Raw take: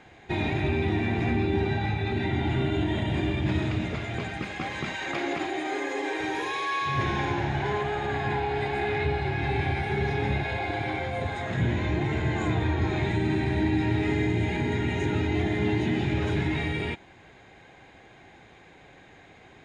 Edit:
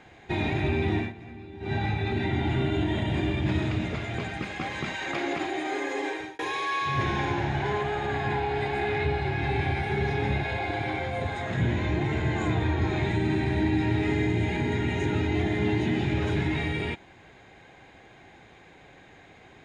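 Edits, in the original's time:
0:00.98–0:01.75: duck −17.5 dB, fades 0.15 s
0:06.06–0:06.39: fade out

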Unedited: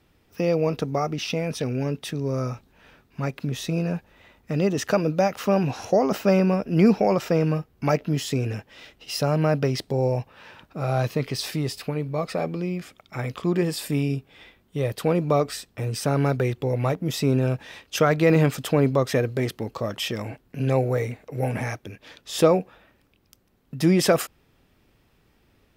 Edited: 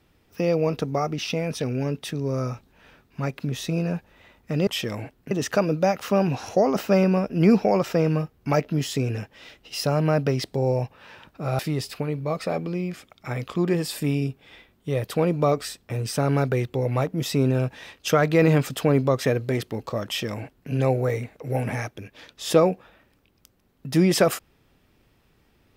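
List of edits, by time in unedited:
0:10.95–0:11.47: remove
0:19.94–0:20.58: duplicate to 0:04.67

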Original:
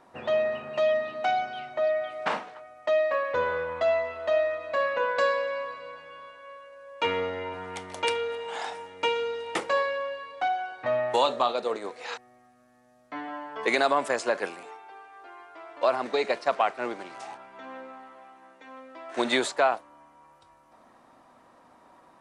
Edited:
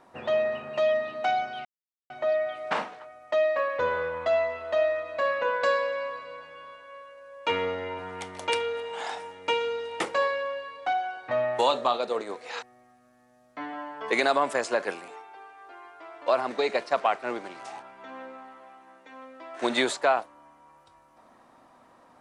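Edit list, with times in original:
0:01.65: splice in silence 0.45 s

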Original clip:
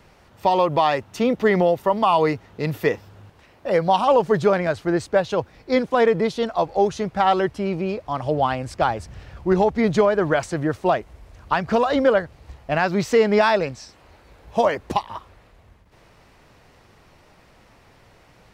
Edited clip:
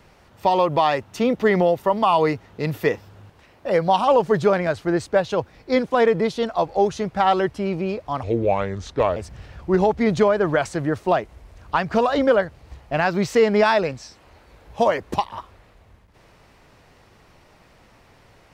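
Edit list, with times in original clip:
0:08.23–0:08.94: play speed 76%

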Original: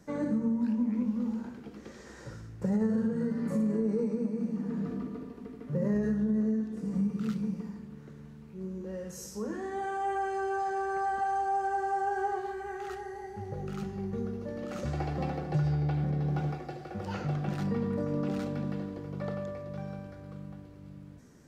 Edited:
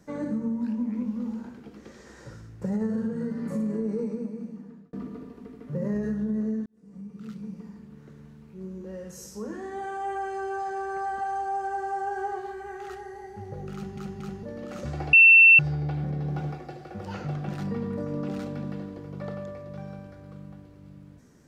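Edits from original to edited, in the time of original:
0:04.08–0:04.93: fade out
0:06.66–0:08.12: fade in
0:13.74: stutter in place 0.23 s, 3 plays
0:15.13–0:15.59: beep over 2,690 Hz −10 dBFS

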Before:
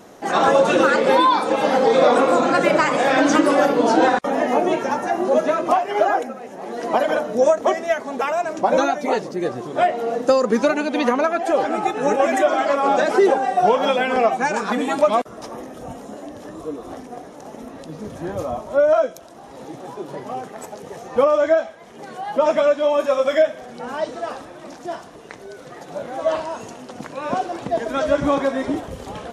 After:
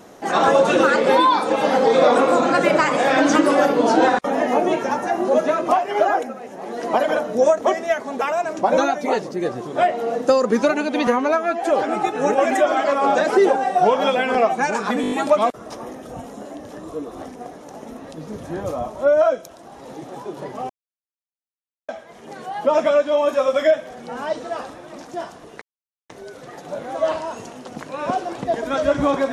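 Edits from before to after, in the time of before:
0:11.07–0:11.44: time-stretch 1.5×
0:14.83: stutter 0.02 s, 6 plays
0:20.41–0:21.60: silence
0:25.33: splice in silence 0.48 s

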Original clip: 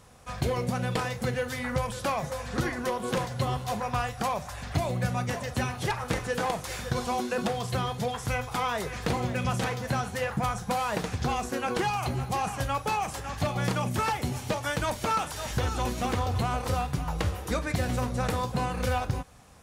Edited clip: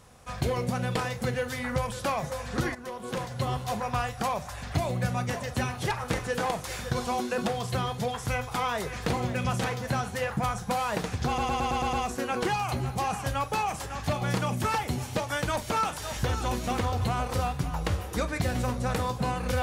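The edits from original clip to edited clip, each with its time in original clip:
0:02.75–0:03.57: fade in, from −12 dB
0:11.27: stutter 0.11 s, 7 plays

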